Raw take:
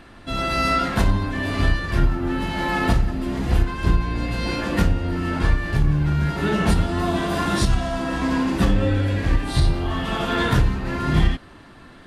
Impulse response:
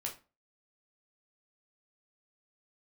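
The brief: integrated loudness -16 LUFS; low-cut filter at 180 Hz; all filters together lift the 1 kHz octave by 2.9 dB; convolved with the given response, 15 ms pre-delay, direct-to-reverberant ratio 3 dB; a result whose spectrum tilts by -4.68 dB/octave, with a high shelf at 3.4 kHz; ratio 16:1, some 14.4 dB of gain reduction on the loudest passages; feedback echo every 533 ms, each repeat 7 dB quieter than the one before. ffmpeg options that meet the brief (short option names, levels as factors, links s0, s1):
-filter_complex "[0:a]highpass=180,equalizer=f=1000:t=o:g=3,highshelf=f=3400:g=7,acompressor=threshold=0.0316:ratio=16,aecho=1:1:533|1066|1599|2132|2665:0.447|0.201|0.0905|0.0407|0.0183,asplit=2[s0][s1];[1:a]atrim=start_sample=2205,adelay=15[s2];[s1][s2]afir=irnorm=-1:irlink=0,volume=0.708[s3];[s0][s3]amix=inputs=2:normalize=0,volume=5.31"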